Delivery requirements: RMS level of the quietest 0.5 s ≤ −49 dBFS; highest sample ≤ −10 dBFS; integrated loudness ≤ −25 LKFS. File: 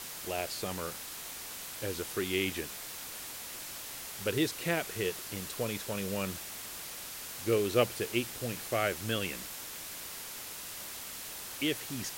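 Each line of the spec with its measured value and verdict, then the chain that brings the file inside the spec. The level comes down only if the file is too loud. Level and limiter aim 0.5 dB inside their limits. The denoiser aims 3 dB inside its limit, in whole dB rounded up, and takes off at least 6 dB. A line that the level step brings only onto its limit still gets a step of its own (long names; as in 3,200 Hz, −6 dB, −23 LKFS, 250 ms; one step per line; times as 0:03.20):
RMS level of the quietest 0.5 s −43 dBFS: out of spec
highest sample −12.5 dBFS: in spec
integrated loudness −35.0 LKFS: in spec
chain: broadband denoise 9 dB, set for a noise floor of −43 dBFS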